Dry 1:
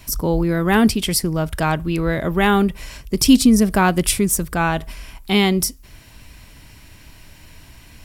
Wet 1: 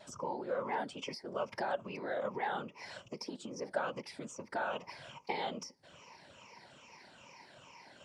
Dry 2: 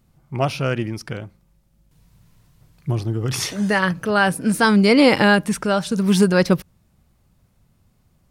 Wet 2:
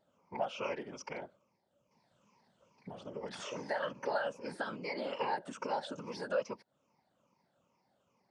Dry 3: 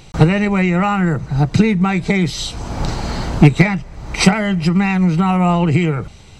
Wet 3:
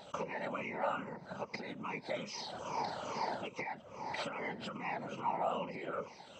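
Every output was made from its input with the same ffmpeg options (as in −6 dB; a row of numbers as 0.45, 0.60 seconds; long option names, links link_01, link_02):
-filter_complex "[0:a]afftfilt=real='re*pow(10,14/40*sin(2*PI*(0.8*log(max(b,1)*sr/1024/100)/log(2)-(-2.4)*(pts-256)/sr)))':imag='im*pow(10,14/40*sin(2*PI*(0.8*log(max(b,1)*sr/1024/100)/log(2)-(-2.4)*(pts-256)/sr)))':win_size=1024:overlap=0.75,acompressor=threshold=-21dB:ratio=16,afftfilt=real='hypot(re,im)*cos(2*PI*random(0))':imag='hypot(re,im)*sin(2*PI*random(1))':win_size=512:overlap=0.75,acrossover=split=930|2100[link_01][link_02][link_03];[link_01]acompressor=threshold=-31dB:ratio=4[link_04];[link_02]acompressor=threshold=-38dB:ratio=4[link_05];[link_03]acompressor=threshold=-38dB:ratio=4[link_06];[link_04][link_05][link_06]amix=inputs=3:normalize=0,highpass=310,equalizer=frequency=310:width_type=q:width=4:gain=-5,equalizer=frequency=560:width_type=q:width=4:gain=8,equalizer=frequency=920:width_type=q:width=4:gain=8,equalizer=frequency=1800:width_type=q:width=4:gain=-3,equalizer=frequency=3900:width_type=q:width=4:gain=-6,lowpass=frequency=6100:width=0.5412,lowpass=frequency=6100:width=1.3066,volume=-3.5dB"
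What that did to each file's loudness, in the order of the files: −22.0, −20.5, −24.0 LU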